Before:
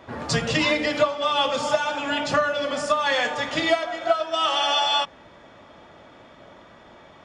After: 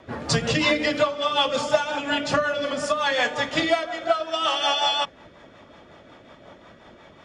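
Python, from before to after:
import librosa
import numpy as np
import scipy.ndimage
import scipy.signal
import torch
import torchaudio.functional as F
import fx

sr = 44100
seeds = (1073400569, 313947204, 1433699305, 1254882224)

y = fx.rotary(x, sr, hz=5.5)
y = F.gain(torch.from_numpy(y), 2.5).numpy()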